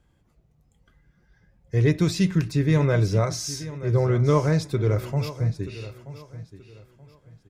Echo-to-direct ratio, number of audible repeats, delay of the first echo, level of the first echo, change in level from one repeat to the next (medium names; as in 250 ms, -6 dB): -14.5 dB, 2, 929 ms, -15.0 dB, -11.0 dB